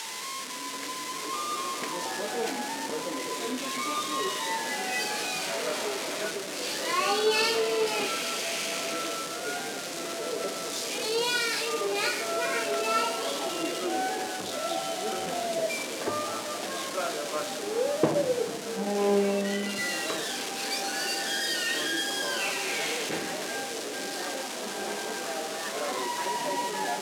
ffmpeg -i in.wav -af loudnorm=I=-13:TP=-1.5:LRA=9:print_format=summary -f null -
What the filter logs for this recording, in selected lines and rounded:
Input Integrated:    -29.5 LUFS
Input True Peak:      -8.4 dBTP
Input LRA:             3.9 LU
Input Threshold:     -39.5 LUFS